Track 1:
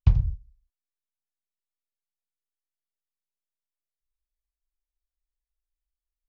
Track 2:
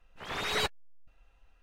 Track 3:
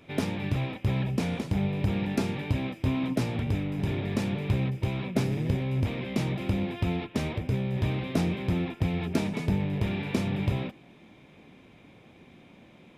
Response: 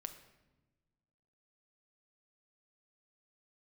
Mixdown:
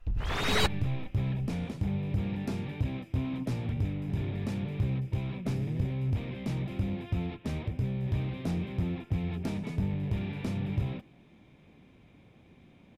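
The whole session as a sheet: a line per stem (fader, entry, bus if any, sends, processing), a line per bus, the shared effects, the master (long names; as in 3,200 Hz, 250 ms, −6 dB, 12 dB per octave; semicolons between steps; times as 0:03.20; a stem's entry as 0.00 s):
−15.5 dB, 0.00 s, no send, hard clipping −20.5 dBFS, distortion −5 dB
+2.0 dB, 0.00 s, no send, no processing
−7.5 dB, 0.30 s, no send, soft clipping −20 dBFS, distortion −17 dB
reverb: not used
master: low-shelf EQ 150 Hz +11 dB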